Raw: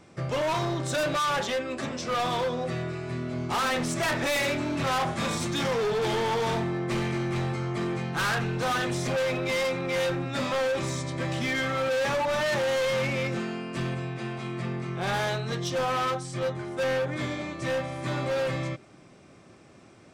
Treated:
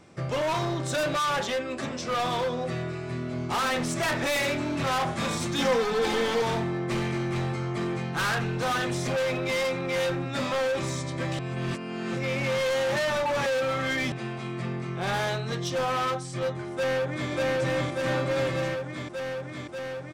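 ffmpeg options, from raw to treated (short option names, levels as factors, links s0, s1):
-filter_complex "[0:a]asettb=1/sr,asplit=3[s0][s1][s2];[s0]atrim=end=5.584[s3];[s1]atrim=start=5.58:end=6.42,asetpts=PTS-STARTPTS,afade=t=in:d=0.004:c=qsin,afade=t=out:st=0.836:d=0.004:c=qsin,aecho=1:1:3.9:0.85,atrim=end_sample=37044[s4];[s2]atrim=start=6.416[s5];[s3][s4]acrossfade=d=0.004:c1=hsin:c2=qsin[s6];[s6][s5]acrossfade=d=0.004:c1=qsin:c2=hsin,asplit=2[s7][s8];[s8]afade=t=in:st=16.73:d=0.01,afade=t=out:st=17.31:d=0.01,aecho=0:1:590|1180|1770|2360|2950|3540|4130|4720|5310|5900|6490|7080:0.944061|0.755249|0.604199|0.483359|0.386687|0.30935|0.24748|0.197984|0.158387|0.12671|0.101368|0.0810942[s9];[s7][s9]amix=inputs=2:normalize=0,asplit=3[s10][s11][s12];[s10]atrim=end=11.392[s13];[s11]atrim=start=11.388:end=14.122,asetpts=PTS-STARTPTS,areverse[s14];[s12]atrim=start=14.118[s15];[s13][s14]acrossfade=d=0.004:c1=hsin:c2=hsin[s16];[s16][s15]acrossfade=d=0.004:c1=hsin:c2=hsin"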